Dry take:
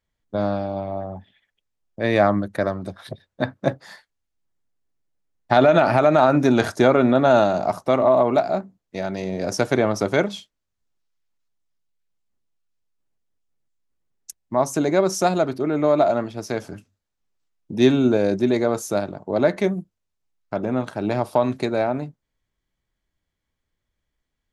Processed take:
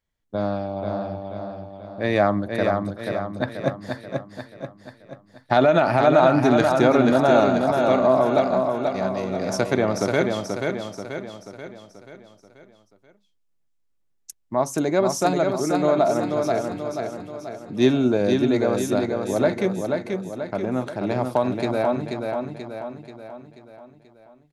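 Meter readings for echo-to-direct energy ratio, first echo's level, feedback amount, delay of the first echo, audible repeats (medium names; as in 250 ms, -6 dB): -3.0 dB, -4.5 dB, 50%, 484 ms, 6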